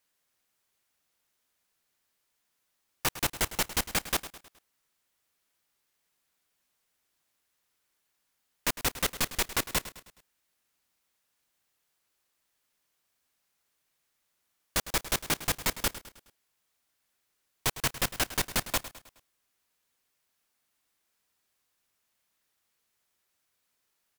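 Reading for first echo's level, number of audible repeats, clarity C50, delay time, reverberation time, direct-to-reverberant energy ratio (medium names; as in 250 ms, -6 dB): -14.5 dB, 4, no reverb, 105 ms, no reverb, no reverb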